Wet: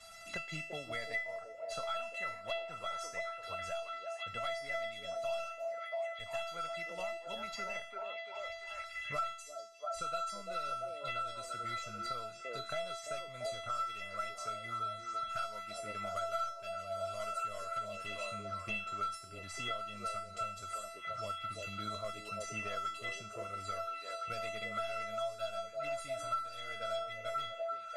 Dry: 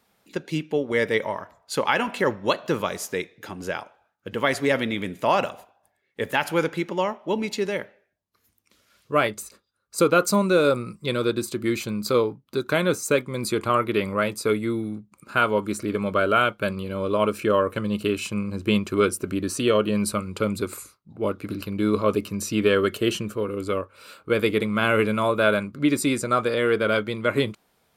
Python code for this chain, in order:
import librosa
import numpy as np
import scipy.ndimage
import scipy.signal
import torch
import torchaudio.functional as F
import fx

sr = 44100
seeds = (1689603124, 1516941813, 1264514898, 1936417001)

y = fx.cvsd(x, sr, bps=64000)
y = scipy.signal.sosfilt(scipy.signal.butter(2, 7400.0, 'lowpass', fs=sr, output='sos'), y)
y = fx.peak_eq(y, sr, hz=350.0, db=-10.5, octaves=1.5)
y = fx.comb_fb(y, sr, f0_hz=670.0, decay_s=0.42, harmonics='all', damping=0.0, mix_pct=100)
y = fx.echo_stepped(y, sr, ms=341, hz=420.0, octaves=0.7, feedback_pct=70, wet_db=-1.5)
y = fx.band_squash(y, sr, depth_pct=100)
y = F.gain(torch.from_numpy(y), 7.0).numpy()